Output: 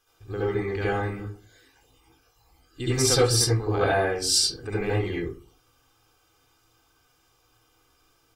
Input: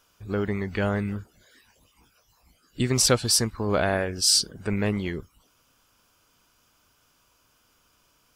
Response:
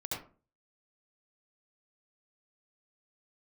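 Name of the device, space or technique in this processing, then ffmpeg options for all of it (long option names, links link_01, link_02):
microphone above a desk: -filter_complex "[0:a]aecho=1:1:2.5:0.71[link_01];[1:a]atrim=start_sample=2205[link_02];[link_01][link_02]afir=irnorm=-1:irlink=0,volume=-3dB"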